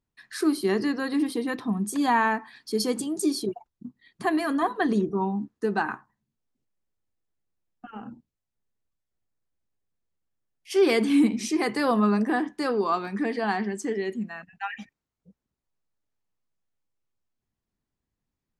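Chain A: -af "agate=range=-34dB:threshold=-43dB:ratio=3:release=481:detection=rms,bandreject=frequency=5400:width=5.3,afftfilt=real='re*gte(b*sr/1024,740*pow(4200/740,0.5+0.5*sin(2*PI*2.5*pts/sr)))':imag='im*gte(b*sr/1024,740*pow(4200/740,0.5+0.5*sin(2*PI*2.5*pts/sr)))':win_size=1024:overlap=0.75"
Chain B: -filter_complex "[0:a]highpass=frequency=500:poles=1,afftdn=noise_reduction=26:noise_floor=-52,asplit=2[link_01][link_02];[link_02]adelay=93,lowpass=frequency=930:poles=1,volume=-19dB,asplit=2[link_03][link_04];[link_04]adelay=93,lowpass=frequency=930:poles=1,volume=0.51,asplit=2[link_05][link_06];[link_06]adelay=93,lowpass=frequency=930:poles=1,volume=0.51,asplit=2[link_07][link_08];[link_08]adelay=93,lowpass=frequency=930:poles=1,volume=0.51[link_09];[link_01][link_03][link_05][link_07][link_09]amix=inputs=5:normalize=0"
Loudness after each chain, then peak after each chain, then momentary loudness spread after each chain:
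−35.5, −29.5 LKFS; −14.5, −12.0 dBFS; 12, 13 LU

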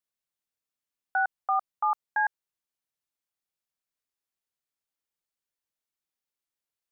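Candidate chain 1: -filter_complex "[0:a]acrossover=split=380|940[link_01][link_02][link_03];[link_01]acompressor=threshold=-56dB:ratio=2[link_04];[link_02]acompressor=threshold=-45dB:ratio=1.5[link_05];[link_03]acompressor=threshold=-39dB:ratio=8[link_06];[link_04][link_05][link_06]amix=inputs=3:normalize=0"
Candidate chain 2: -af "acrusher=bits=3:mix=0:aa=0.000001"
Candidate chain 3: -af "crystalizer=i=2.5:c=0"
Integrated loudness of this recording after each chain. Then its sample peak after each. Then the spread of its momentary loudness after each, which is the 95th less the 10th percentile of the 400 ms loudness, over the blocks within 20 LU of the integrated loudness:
−37.5, −26.5, −28.0 LKFS; −21.5, −17.0, −17.0 dBFS; 4, 3, 3 LU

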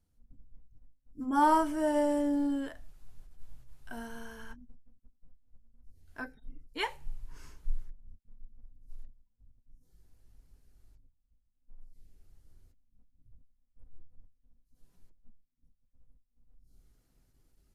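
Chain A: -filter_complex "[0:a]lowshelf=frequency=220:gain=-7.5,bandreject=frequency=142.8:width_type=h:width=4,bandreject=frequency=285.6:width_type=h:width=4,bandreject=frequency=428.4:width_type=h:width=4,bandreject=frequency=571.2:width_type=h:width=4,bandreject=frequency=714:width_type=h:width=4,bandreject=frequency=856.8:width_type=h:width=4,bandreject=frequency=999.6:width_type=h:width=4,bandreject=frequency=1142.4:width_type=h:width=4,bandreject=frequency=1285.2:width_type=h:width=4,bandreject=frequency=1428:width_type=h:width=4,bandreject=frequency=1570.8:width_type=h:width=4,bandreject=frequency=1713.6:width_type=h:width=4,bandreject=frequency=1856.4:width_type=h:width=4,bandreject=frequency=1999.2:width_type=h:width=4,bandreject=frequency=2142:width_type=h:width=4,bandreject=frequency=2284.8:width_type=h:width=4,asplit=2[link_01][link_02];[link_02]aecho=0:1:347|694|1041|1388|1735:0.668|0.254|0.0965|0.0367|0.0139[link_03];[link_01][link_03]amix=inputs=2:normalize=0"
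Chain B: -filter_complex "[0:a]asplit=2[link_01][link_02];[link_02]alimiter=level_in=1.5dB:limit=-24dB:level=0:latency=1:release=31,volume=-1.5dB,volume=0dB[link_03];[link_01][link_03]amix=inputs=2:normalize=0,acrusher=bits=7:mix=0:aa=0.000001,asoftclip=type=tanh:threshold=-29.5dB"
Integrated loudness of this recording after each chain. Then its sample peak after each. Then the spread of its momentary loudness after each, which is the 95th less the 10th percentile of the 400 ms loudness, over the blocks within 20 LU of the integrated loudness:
−31.5, −36.5 LKFS; −15.5, −29.5 dBFS; 22, 24 LU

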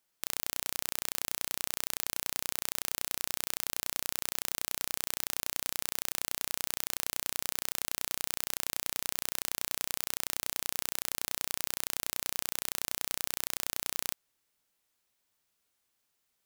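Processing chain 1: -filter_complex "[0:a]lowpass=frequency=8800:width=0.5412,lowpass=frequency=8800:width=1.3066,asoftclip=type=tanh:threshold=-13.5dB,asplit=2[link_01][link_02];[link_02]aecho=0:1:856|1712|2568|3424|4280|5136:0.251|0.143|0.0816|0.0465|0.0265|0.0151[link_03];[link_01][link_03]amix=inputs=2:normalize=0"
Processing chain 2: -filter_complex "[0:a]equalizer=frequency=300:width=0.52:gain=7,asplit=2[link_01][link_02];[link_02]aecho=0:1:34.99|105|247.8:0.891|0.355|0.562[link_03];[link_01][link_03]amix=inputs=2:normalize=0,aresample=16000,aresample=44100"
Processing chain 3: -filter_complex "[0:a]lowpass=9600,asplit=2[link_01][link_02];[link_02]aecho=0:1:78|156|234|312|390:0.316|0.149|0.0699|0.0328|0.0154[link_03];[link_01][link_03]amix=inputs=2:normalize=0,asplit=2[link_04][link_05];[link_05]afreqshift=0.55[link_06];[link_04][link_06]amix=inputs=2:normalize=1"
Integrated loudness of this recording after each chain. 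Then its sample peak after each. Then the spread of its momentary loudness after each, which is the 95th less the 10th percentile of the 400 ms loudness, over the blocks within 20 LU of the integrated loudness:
−39.5, −34.5, −39.5 LKFS; −15.0, −13.0, −16.0 dBFS; 11, 0, 1 LU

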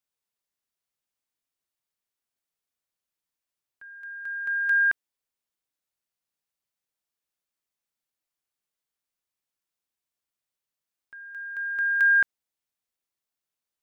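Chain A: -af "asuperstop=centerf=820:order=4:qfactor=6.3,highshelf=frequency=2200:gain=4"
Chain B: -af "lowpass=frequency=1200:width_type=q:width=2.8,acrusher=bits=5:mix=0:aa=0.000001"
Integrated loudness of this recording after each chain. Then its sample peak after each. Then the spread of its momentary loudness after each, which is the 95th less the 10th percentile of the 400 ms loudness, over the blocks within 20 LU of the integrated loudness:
−21.5, −22.5 LKFS; −14.0, −14.5 dBFS; 20, 17 LU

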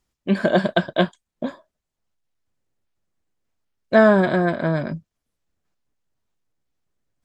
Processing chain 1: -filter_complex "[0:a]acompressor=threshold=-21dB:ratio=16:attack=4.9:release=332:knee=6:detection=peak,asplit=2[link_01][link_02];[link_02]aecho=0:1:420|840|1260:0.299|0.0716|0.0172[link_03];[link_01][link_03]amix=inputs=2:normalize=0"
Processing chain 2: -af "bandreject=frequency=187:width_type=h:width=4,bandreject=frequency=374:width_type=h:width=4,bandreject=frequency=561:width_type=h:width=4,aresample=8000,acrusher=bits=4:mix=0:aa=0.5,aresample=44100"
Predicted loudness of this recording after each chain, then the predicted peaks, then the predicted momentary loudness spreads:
−30.0, −19.5 LKFS; −13.0, −2.0 dBFS; 17, 17 LU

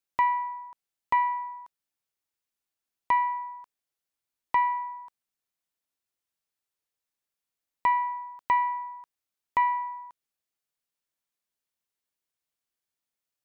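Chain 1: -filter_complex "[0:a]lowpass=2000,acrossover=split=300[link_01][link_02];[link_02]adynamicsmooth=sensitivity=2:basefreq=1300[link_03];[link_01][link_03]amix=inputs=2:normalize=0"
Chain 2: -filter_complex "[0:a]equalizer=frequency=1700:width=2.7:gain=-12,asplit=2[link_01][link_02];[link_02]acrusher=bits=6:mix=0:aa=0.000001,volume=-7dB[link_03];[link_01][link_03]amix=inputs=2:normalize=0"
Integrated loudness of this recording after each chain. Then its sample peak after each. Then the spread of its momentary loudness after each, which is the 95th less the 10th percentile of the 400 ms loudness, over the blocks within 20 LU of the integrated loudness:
−29.0, −26.5 LKFS; −14.5, −13.5 dBFS; 16, 16 LU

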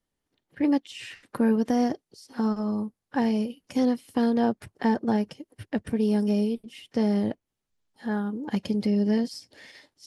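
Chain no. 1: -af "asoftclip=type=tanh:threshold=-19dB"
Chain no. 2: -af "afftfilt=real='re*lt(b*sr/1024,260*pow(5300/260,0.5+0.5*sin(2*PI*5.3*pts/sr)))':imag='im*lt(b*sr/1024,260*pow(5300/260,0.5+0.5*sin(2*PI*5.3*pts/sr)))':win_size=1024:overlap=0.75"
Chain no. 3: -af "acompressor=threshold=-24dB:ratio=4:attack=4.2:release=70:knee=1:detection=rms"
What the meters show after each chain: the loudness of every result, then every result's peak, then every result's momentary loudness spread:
−28.5, −27.0, −30.0 LKFS; −19.5, −13.0, −18.5 dBFS; 14, 12, 12 LU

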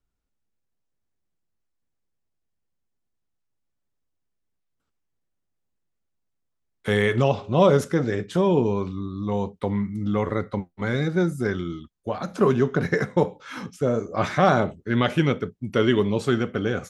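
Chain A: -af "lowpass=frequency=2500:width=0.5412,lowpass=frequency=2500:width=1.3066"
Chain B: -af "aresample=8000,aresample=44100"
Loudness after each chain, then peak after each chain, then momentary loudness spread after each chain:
−23.5, −23.5 LKFS; −5.0, −5.0 dBFS; 11, 11 LU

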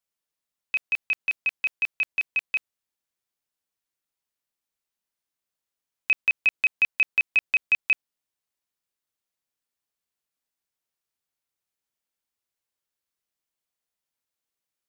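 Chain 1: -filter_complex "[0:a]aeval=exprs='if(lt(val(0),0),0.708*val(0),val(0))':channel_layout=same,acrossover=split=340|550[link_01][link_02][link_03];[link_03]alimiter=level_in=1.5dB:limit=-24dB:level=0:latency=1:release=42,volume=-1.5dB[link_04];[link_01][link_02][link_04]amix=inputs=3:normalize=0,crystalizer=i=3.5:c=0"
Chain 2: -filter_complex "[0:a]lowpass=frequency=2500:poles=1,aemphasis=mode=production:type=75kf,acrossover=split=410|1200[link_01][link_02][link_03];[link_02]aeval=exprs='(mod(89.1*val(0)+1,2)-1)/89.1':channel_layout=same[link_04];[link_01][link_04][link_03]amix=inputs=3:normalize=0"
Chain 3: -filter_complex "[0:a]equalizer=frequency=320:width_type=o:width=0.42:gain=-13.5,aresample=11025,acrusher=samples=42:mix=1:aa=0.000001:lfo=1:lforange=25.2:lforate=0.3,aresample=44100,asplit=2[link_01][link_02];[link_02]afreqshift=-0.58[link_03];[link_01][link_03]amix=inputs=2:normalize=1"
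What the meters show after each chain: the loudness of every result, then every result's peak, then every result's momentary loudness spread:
−29.0, −23.0, −33.0 LKFS; −19.5, −13.0, −13.0 dBFS; 5, 7, 8 LU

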